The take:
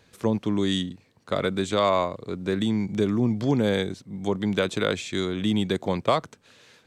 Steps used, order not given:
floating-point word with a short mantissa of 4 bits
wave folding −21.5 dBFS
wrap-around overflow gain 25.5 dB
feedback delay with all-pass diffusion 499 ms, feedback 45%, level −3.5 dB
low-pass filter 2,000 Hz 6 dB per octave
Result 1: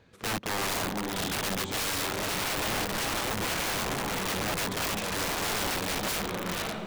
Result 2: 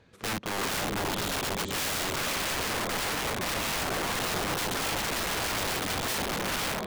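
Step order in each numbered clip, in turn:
low-pass filter, then wave folding, then floating-point word with a short mantissa, then feedback delay with all-pass diffusion, then wrap-around overflow
feedback delay with all-pass diffusion, then floating-point word with a short mantissa, then low-pass filter, then wrap-around overflow, then wave folding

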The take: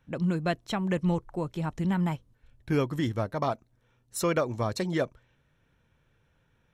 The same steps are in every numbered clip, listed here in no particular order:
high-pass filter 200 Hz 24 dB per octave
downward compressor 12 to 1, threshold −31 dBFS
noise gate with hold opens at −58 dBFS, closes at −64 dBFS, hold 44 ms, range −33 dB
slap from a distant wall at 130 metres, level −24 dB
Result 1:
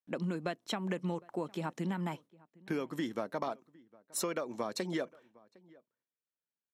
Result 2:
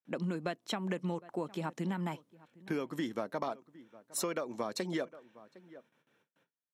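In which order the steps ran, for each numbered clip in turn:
high-pass filter, then noise gate with hold, then downward compressor, then slap from a distant wall
slap from a distant wall, then noise gate with hold, then high-pass filter, then downward compressor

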